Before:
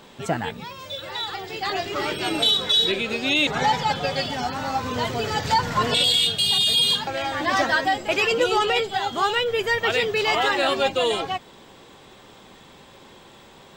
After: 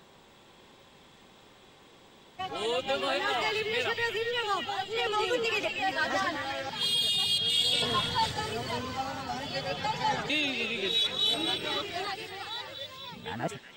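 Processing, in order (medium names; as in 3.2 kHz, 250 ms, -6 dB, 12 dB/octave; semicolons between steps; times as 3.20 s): reverse the whole clip; repeats whose band climbs or falls 237 ms, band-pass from 2.6 kHz, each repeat 0.7 oct, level -4.5 dB; trim -8.5 dB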